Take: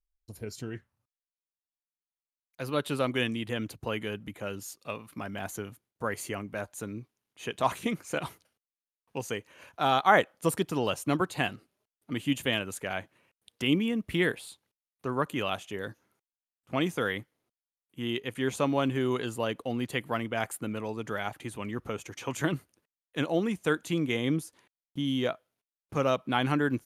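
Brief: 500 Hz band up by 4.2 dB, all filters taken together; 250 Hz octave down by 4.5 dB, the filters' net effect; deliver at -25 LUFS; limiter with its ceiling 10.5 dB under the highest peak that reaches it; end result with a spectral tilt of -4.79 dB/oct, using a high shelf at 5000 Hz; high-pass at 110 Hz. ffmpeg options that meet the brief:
-af "highpass=110,equalizer=f=250:t=o:g=-8.5,equalizer=f=500:t=o:g=7.5,highshelf=f=5k:g=-3.5,volume=7.5dB,alimiter=limit=-9.5dB:level=0:latency=1"

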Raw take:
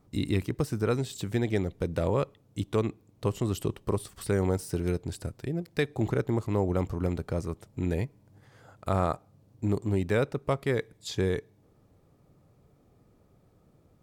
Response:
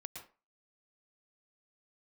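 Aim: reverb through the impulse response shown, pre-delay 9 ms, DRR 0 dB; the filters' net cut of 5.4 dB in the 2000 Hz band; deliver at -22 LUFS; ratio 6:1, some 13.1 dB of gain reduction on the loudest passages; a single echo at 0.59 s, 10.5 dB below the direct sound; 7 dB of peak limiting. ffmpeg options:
-filter_complex "[0:a]equalizer=f=2k:t=o:g=-7,acompressor=threshold=-37dB:ratio=6,alimiter=level_in=7.5dB:limit=-24dB:level=0:latency=1,volume=-7.5dB,aecho=1:1:590:0.299,asplit=2[a][b];[1:a]atrim=start_sample=2205,adelay=9[c];[b][c]afir=irnorm=-1:irlink=0,volume=3.5dB[d];[a][d]amix=inputs=2:normalize=0,volume=18dB"

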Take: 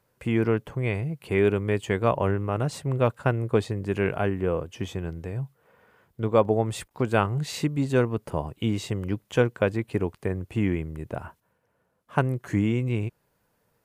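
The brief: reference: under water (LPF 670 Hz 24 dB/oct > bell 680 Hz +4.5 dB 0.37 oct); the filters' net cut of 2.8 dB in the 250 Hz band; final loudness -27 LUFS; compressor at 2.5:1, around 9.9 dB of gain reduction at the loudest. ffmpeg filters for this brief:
-af "equalizer=f=250:t=o:g=-4,acompressor=threshold=-32dB:ratio=2.5,lowpass=f=670:w=0.5412,lowpass=f=670:w=1.3066,equalizer=f=680:t=o:w=0.37:g=4.5,volume=8.5dB"

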